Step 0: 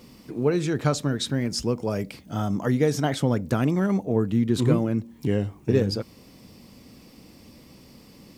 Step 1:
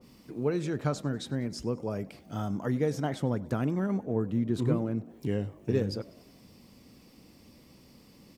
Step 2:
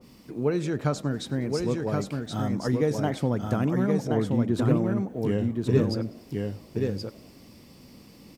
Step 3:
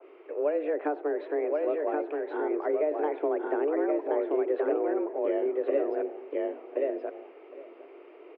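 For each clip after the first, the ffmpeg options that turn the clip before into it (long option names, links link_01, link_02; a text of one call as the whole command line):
ffmpeg -i in.wav -filter_complex "[0:a]asplit=5[link_01][link_02][link_03][link_04][link_05];[link_02]adelay=97,afreqshift=53,volume=-22.5dB[link_06];[link_03]adelay=194,afreqshift=106,volume=-26.9dB[link_07];[link_04]adelay=291,afreqshift=159,volume=-31.4dB[link_08];[link_05]adelay=388,afreqshift=212,volume=-35.8dB[link_09];[link_01][link_06][link_07][link_08][link_09]amix=inputs=5:normalize=0,adynamicequalizer=threshold=0.00631:dfrequency=1900:dqfactor=0.7:tfrequency=1900:tqfactor=0.7:attack=5:release=100:ratio=0.375:range=3.5:mode=cutabove:tftype=highshelf,volume=-6.5dB" out.wav
ffmpeg -i in.wav -af "aecho=1:1:1075:0.668,volume=3.5dB" out.wav
ffmpeg -i in.wav -filter_complex "[0:a]highpass=frequency=190:width_type=q:width=0.5412,highpass=frequency=190:width_type=q:width=1.307,lowpass=frequency=2400:width_type=q:width=0.5176,lowpass=frequency=2400:width_type=q:width=0.7071,lowpass=frequency=2400:width_type=q:width=1.932,afreqshift=150,acrossover=split=730|1800[link_01][link_02][link_03];[link_01]acompressor=threshold=-27dB:ratio=4[link_04];[link_02]acompressor=threshold=-45dB:ratio=4[link_05];[link_03]acompressor=threshold=-54dB:ratio=4[link_06];[link_04][link_05][link_06]amix=inputs=3:normalize=0,asplit=2[link_07][link_08];[link_08]adelay=758,volume=-17dB,highshelf=frequency=4000:gain=-17.1[link_09];[link_07][link_09]amix=inputs=2:normalize=0,volume=2.5dB" out.wav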